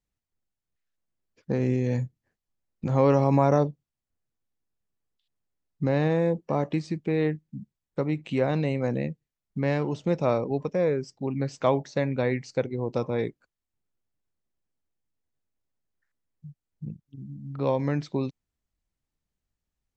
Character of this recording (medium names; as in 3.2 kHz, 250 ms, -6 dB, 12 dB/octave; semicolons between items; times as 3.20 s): noise floor -88 dBFS; spectral tilt -6.5 dB/octave